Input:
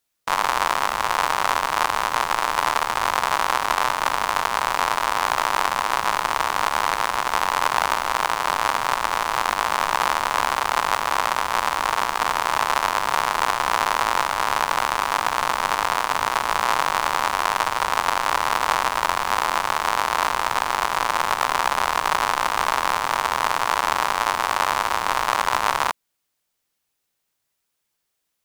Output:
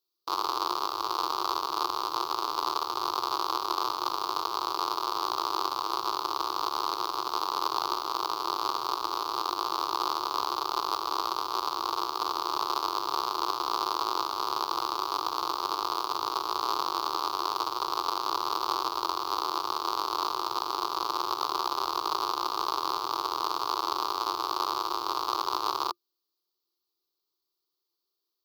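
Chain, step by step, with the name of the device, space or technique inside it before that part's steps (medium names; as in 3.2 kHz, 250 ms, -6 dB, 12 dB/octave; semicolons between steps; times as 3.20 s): filter by subtraction (in parallel: low-pass 390 Hz 12 dB/octave + polarity flip); on the sum: FFT filter 130 Hz 0 dB, 230 Hz -15 dB, 350 Hz +11 dB, 570 Hz -9 dB, 840 Hz -4 dB, 1.2 kHz +3 dB, 1.8 kHz -23 dB, 4.5 kHz +10 dB, 8.7 kHz -15 dB, 13 kHz +2 dB; trim -8.5 dB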